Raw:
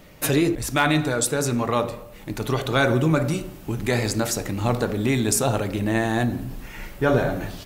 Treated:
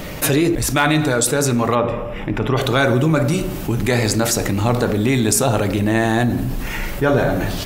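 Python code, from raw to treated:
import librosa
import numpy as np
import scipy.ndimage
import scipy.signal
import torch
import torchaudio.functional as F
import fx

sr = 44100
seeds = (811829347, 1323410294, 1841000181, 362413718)

y = fx.savgol(x, sr, points=25, at=(1.74, 2.56), fade=0.02)
y = fx.env_flatten(y, sr, amount_pct=50)
y = F.gain(torch.from_numpy(y), 2.5).numpy()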